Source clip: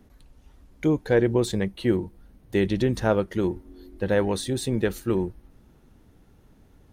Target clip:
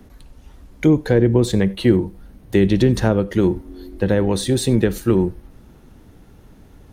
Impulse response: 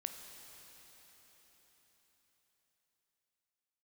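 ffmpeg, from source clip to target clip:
-filter_complex "[0:a]acrossover=split=340[link_01][link_02];[link_02]acompressor=threshold=-30dB:ratio=5[link_03];[link_01][link_03]amix=inputs=2:normalize=0,asplit=2[link_04][link_05];[1:a]atrim=start_sample=2205,afade=type=out:start_time=0.15:duration=0.01,atrim=end_sample=7056[link_06];[link_05][link_06]afir=irnorm=-1:irlink=0,volume=0.5dB[link_07];[link_04][link_07]amix=inputs=2:normalize=0,volume=4.5dB"

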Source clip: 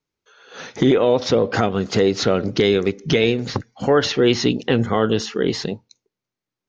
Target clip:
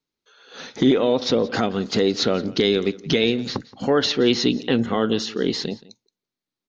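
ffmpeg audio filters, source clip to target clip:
ffmpeg -i in.wav -filter_complex "[0:a]equalizer=frequency=100:width_type=o:width=0.67:gain=-6,equalizer=frequency=250:width_type=o:width=0.67:gain=5,equalizer=frequency=4000:width_type=o:width=0.67:gain=7,asplit=2[link_01][link_02];[link_02]aecho=0:1:173:0.0944[link_03];[link_01][link_03]amix=inputs=2:normalize=0,volume=-4dB" out.wav

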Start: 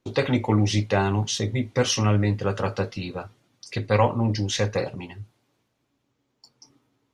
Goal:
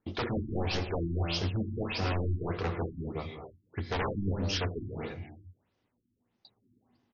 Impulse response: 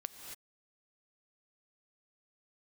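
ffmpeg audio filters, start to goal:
-filter_complex "[0:a]aeval=exprs='0.1*(abs(mod(val(0)/0.1+3,4)-2)-1)':channel_layout=same,asetrate=38170,aresample=44100,atempo=1.15535[link_01];[1:a]atrim=start_sample=2205[link_02];[link_01][link_02]afir=irnorm=-1:irlink=0,afftfilt=real='re*lt(b*sr/1024,340*pow(7000/340,0.5+0.5*sin(2*PI*1.6*pts/sr)))':imag='im*lt(b*sr/1024,340*pow(7000/340,0.5+0.5*sin(2*PI*1.6*pts/sr)))':win_size=1024:overlap=0.75,volume=-2dB"

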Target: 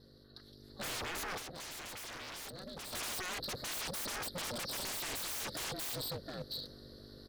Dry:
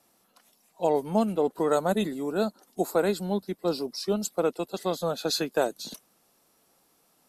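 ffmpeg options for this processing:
ffmpeg -i in.wav -filter_complex "[0:a]aeval=exprs='(tanh(50.1*val(0)+0.65)-tanh(0.65))/50.1':channel_layout=same,firequalizer=gain_entry='entry(140,0);entry(220,-8);entry(320,13);entry(730,-19);entry(1600,2);entry(2400,-23);entry(4200,13);entry(6500,-22);entry(12000,-15)':delay=0.05:min_phase=1,aeval=exprs='val(0)+0.002*(sin(2*PI*50*n/s)+sin(2*PI*2*50*n/s)/2+sin(2*PI*3*50*n/s)/3+sin(2*PI*4*50*n/s)/4+sin(2*PI*5*50*n/s)/5)':channel_layout=same,equalizer=frequency=81:width_type=o:width=2.5:gain=-13,aecho=1:1:711:0.133,dynaudnorm=framelen=240:gausssize=5:maxgain=8dB,aeval=exprs='0.01*(abs(mod(val(0)/0.01+3,4)-2)-1)':channel_layout=same,highpass=59,aeval=exprs='val(0)*sin(2*PI*180*n/s)':channel_layout=same,asettb=1/sr,asplit=3[link_01][link_02][link_03];[link_01]atrim=end=1.374[link_04];[link_02]atrim=start=1.37:end=2.93,asetpts=PTS-STARTPTS,afade=type=in:duration=0.004:curve=qsin,afade=type=out:start_time=1.556:duration=0.004:curve=qsin,acompressor=threshold=-51dB:ratio=6[link_05];[link_03]atrim=start=2.926[link_06];[link_04][link_05]acrossfade=duration=0.004:curve1=hsin:curve2=qsin[link_07];[link_07][link_06]acrossfade=duration=0.004:curve1=qsin:curve2=hsin,volume=8dB" out.wav

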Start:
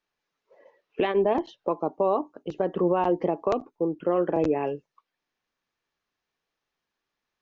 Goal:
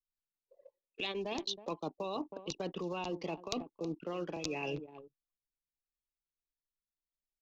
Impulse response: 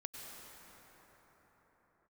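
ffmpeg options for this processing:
-filter_complex "[0:a]bandreject=frequency=3100:width=7.7,acrossover=split=250|1000[link_01][link_02][link_03];[link_01]acompressor=threshold=-34dB:ratio=4[link_04];[link_02]acompressor=threshold=-34dB:ratio=4[link_05];[link_03]acompressor=threshold=-37dB:ratio=4[link_06];[link_04][link_05][link_06]amix=inputs=3:normalize=0,asplit=2[link_07][link_08];[link_08]adelay=320.7,volume=-16dB,highshelf=frequency=4000:gain=-7.22[link_09];[link_07][link_09]amix=inputs=2:normalize=0,anlmdn=0.0398,aexciter=amount=14.7:drive=6.2:freq=2800,areverse,acompressor=threshold=-35dB:ratio=16,areverse,volume=1dB"

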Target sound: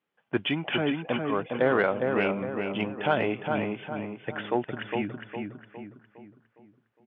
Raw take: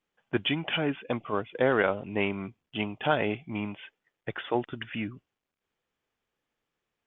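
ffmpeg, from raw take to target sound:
ffmpeg -i in.wav -filter_complex "[0:a]asoftclip=type=tanh:threshold=-11dB,highpass=110,lowpass=3100,asplit=2[link_01][link_02];[link_02]adelay=409,lowpass=frequency=2300:poles=1,volume=-4dB,asplit=2[link_03][link_04];[link_04]adelay=409,lowpass=frequency=2300:poles=1,volume=0.46,asplit=2[link_05][link_06];[link_06]adelay=409,lowpass=frequency=2300:poles=1,volume=0.46,asplit=2[link_07][link_08];[link_08]adelay=409,lowpass=frequency=2300:poles=1,volume=0.46,asplit=2[link_09][link_10];[link_10]adelay=409,lowpass=frequency=2300:poles=1,volume=0.46,asplit=2[link_11][link_12];[link_12]adelay=409,lowpass=frequency=2300:poles=1,volume=0.46[link_13];[link_03][link_05][link_07][link_09][link_11][link_13]amix=inputs=6:normalize=0[link_14];[link_01][link_14]amix=inputs=2:normalize=0,volume=1.5dB" out.wav

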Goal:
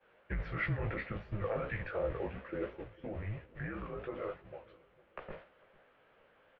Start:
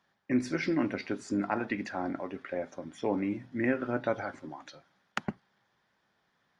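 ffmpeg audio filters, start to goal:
ffmpeg -i in.wav -filter_complex "[0:a]aeval=exprs='val(0)+0.5*0.0133*sgn(val(0))':channel_layout=same,highpass=100,agate=range=-33dB:threshold=-31dB:ratio=3:detection=peak,equalizer=frequency=710:width=4.1:gain=12,alimiter=limit=-23dB:level=0:latency=1:release=30,flanger=delay=15:depth=4.8:speed=2.9,crystalizer=i=3:c=0,asettb=1/sr,asplit=3[link_01][link_02][link_03];[link_01]atrim=end=2.884[link_04];[link_02]atrim=start=2.88:end=5.3,asetpts=PTS-STARTPTS,afade=type=in:duration=0.004:curve=qsin,afade=type=out:start_time=2.416:duration=0.004:curve=qsin,flanger=delay=0.1:depth=6.9:regen=-85:speed=1.2:shape=sinusoidal[link_05];[link_03]atrim=start=5.296[link_06];[link_04][link_05]acrossfade=duration=0.004:curve1=hsin:curve2=qsin[link_07];[link_07][link_06]acrossfade=duration=0.004:curve1=qsin:curve2=hsin,asplit=2[link_08][link_09];[link_09]adelay=452,lowpass=frequency=1100:poles=1,volume=-21dB,asplit=2[link_10][link_11];[link_11]adelay=452,lowpass=frequency=1100:poles=1,volume=0.47,asplit=2[link_12][link_13];[link_13]adelay=452,lowpass=frequency=1100:poles=1,volume=0.47[link_14];[link_08][link_10][link_12][link_14]amix=inputs=4:normalize=0,highpass=frequency=250:width_type=q:width=0.5412,highpass=frequency=250:width_type=q:width=1.307,lowpass=frequency=2900:width_type=q:width=0.5176,lowpass=frequency=2900:width_type=q:width=0.7071,lowpass=frequency=2900:width_type=q:width=1.932,afreqshift=-200,volume=-1dB" out.wav

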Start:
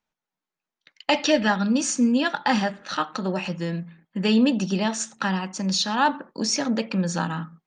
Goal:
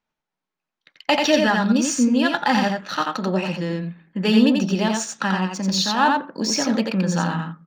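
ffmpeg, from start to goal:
ffmpeg -i in.wav -af "adynamicsmooth=sensitivity=6:basefreq=6400,aecho=1:1:87:0.668,volume=2dB" out.wav

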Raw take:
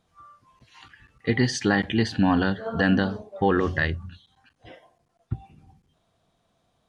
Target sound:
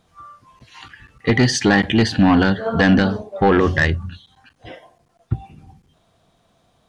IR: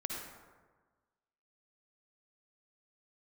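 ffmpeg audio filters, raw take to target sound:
-af "aeval=exprs='0.422*sin(PI/2*1.78*val(0)/0.422)':channel_layout=same"

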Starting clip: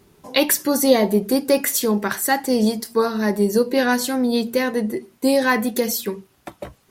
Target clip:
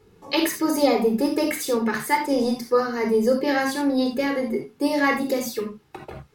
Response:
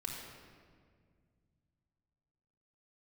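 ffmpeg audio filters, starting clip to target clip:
-filter_complex "[0:a]lowpass=frequency=3900:poles=1[link_01];[1:a]atrim=start_sample=2205,atrim=end_sample=4410[link_02];[link_01][link_02]afir=irnorm=-1:irlink=0,asetrate=48000,aresample=44100"

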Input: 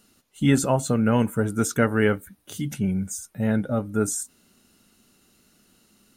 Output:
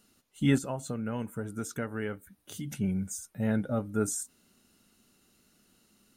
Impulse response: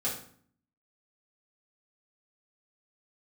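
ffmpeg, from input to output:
-filter_complex "[0:a]asplit=3[link_01][link_02][link_03];[link_01]afade=type=out:start_time=0.57:duration=0.02[link_04];[link_02]acompressor=threshold=-32dB:ratio=2,afade=type=in:start_time=0.57:duration=0.02,afade=type=out:start_time=2.67:duration=0.02[link_05];[link_03]afade=type=in:start_time=2.67:duration=0.02[link_06];[link_04][link_05][link_06]amix=inputs=3:normalize=0,volume=-5.5dB"

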